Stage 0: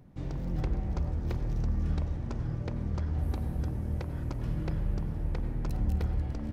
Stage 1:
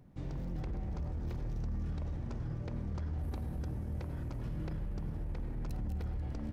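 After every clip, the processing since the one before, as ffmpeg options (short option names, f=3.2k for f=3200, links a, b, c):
-af "alimiter=level_in=4dB:limit=-24dB:level=0:latency=1:release=15,volume=-4dB,volume=-3.5dB"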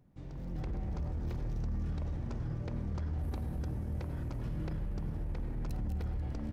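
-af "dynaudnorm=f=310:g=3:m=8dB,volume=-6.5dB"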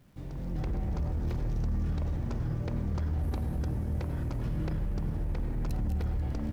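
-af "acrusher=bits=11:mix=0:aa=0.000001,volume=5dB"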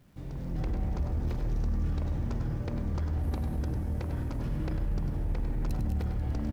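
-af "aecho=1:1:99:0.376"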